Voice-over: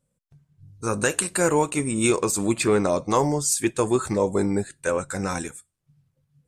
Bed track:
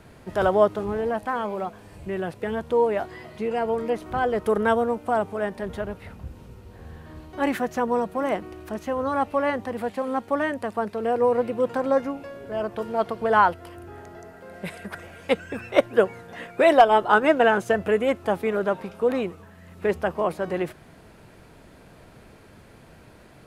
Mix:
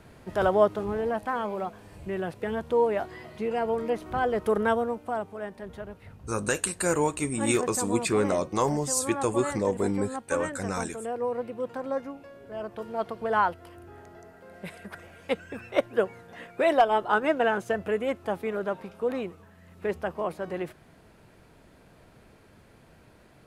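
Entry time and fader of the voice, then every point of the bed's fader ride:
5.45 s, -4.5 dB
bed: 4.59 s -2.5 dB
5.31 s -9 dB
12.31 s -9 dB
13.05 s -6 dB

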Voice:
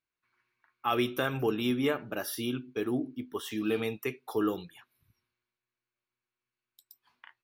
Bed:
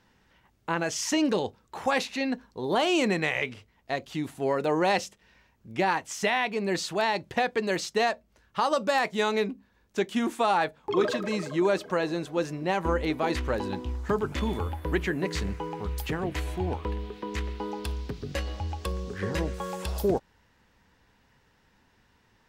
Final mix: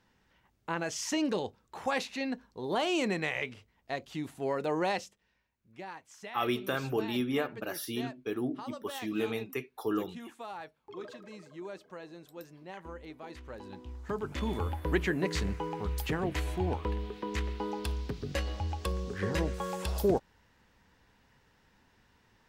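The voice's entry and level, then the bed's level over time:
5.50 s, -2.5 dB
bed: 4.84 s -5.5 dB
5.5 s -18.5 dB
13.35 s -18.5 dB
14.68 s -1.5 dB

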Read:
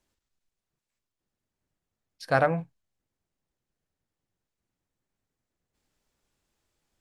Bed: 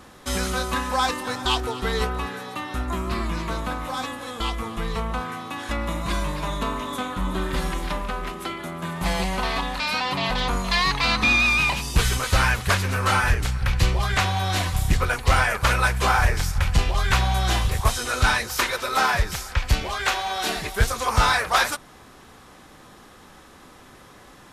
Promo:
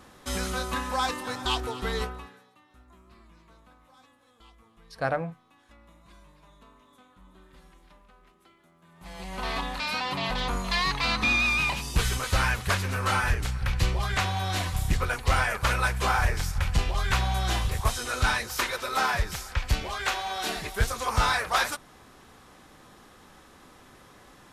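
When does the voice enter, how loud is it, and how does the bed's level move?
2.70 s, -5.0 dB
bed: 1.98 s -5 dB
2.56 s -28.5 dB
8.85 s -28.5 dB
9.49 s -5 dB

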